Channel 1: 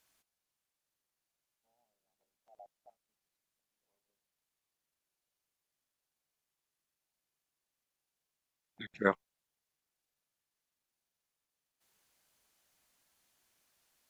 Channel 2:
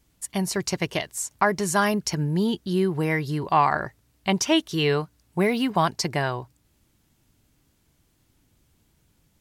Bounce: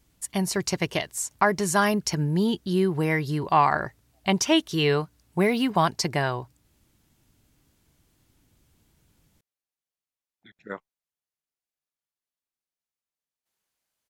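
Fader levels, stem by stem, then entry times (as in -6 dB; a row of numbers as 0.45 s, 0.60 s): -7.5 dB, 0.0 dB; 1.65 s, 0.00 s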